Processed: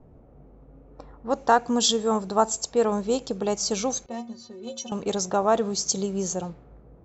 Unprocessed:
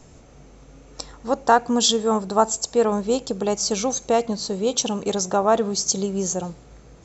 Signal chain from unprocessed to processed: level-controlled noise filter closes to 710 Hz, open at -18.5 dBFS; 4.06–4.92 s: inharmonic resonator 110 Hz, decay 0.32 s, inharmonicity 0.03; trim -3 dB

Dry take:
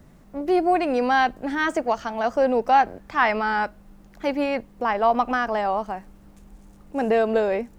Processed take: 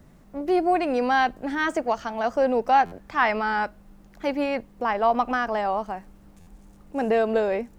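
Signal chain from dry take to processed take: buffer glitch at 2.85/6.40 s, samples 512, times 5; trim -1.5 dB

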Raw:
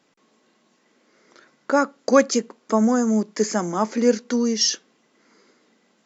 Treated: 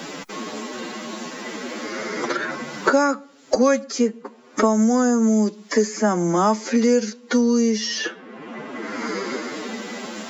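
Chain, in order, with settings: time stretch by phase-locked vocoder 1.7×; three bands compressed up and down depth 100%; trim +1.5 dB

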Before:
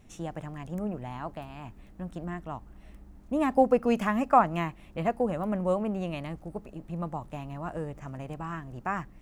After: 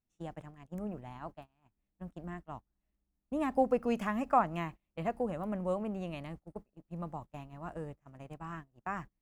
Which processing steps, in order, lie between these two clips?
gate -37 dBFS, range -27 dB; trim -6.5 dB

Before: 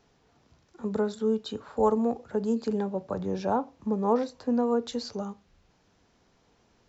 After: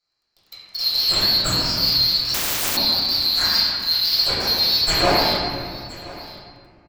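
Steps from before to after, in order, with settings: split-band scrambler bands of 4 kHz; dynamic bell 4 kHz, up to -5 dB, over -35 dBFS, Q 1.2; waveshaping leveller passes 5; peak limiter -21.5 dBFS, peak gain reduction 5.5 dB; waveshaping leveller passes 3; AM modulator 160 Hz, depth 60%; delay 1022 ms -19 dB; reverberation RT60 2.0 s, pre-delay 3 ms, DRR -13.5 dB; 2.34–2.77 s: spectrum-flattening compressor 10:1; trim -2 dB

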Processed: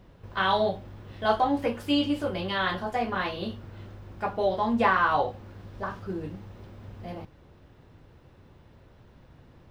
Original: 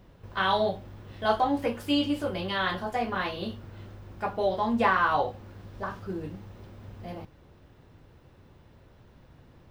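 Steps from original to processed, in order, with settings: treble shelf 8.4 kHz -5.5 dB; trim +1 dB

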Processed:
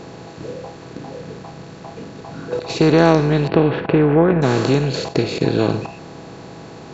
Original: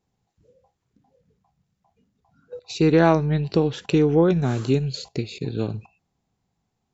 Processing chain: spectral levelling over time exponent 0.4; 3.47–4.41 s: low-pass 3.4 kHz -> 2.1 kHz 24 dB/octave; trim +1 dB

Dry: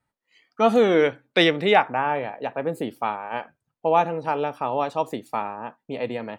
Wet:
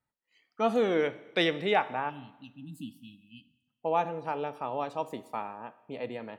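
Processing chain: spectral selection erased 2.10–3.68 s, 320–2500 Hz; Schroeder reverb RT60 1.1 s, combs from 28 ms, DRR 16 dB; trim -8.5 dB

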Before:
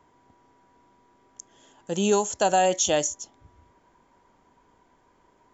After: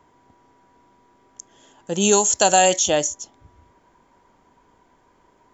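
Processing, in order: 2.00–2.78 s: treble shelf 3.8 kHz -> 2.4 kHz +12 dB; trim +3.5 dB

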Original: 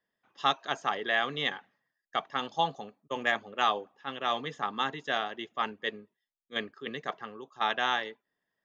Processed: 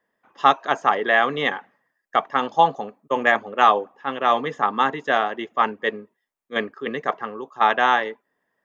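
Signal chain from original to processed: graphic EQ 250/500/1000/2000/4000 Hz +5/+6/+7/+4/-5 dB; trim +4.5 dB

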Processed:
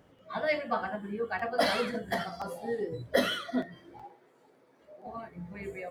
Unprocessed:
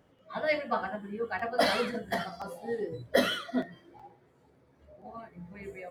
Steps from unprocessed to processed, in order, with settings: 4.04–5.07 s: high-pass 300 Hz 12 dB/octave; in parallel at 0 dB: compression, threshold -38 dBFS, peak gain reduction 17.5 dB; on the sum: trim -2.5 dB

